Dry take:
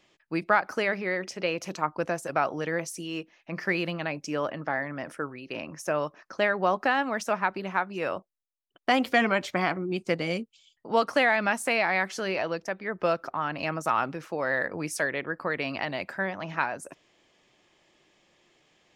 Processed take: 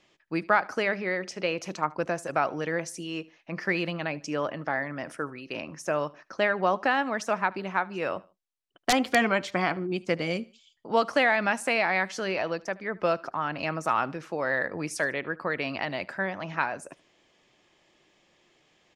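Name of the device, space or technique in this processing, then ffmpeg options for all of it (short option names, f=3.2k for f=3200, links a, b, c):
overflowing digital effects unit: -filter_complex "[0:a]asettb=1/sr,asplit=3[a][b][c];[a]atrim=end=4.564[d];[b]atrim=start=4.56:end=5.61,asetpts=PTS-STARTPTS,afade=t=in:d=0.004:c=qsin,afade=t=out:st=1.046:d=0.004:c=qsin,highshelf=f=5.2k:g=6[e];[c]atrim=start=5.606[f];[d][e]acrossfade=d=0.004:c1=hsin:c2=qsin[g];[g][f]acrossfade=d=0.004:c1=qsin:c2=hsin,aecho=1:1:75|150:0.0708|0.0248,aeval=exprs='(mod(2.99*val(0)+1,2)-1)/2.99':c=same,lowpass=9.5k"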